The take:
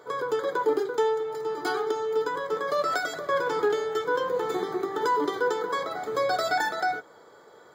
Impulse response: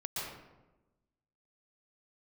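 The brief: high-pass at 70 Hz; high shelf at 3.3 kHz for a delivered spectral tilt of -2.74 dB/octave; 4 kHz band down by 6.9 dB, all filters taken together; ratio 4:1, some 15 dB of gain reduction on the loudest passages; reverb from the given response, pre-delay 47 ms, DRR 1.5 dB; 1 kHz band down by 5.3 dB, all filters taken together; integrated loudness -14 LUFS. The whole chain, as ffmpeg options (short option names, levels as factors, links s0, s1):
-filter_complex "[0:a]highpass=70,equalizer=f=1000:t=o:g=-6,highshelf=f=3300:g=-4.5,equalizer=f=4000:t=o:g=-5,acompressor=threshold=0.01:ratio=4,asplit=2[s0][s1];[1:a]atrim=start_sample=2205,adelay=47[s2];[s1][s2]afir=irnorm=-1:irlink=0,volume=0.596[s3];[s0][s3]amix=inputs=2:normalize=0,volume=17.8"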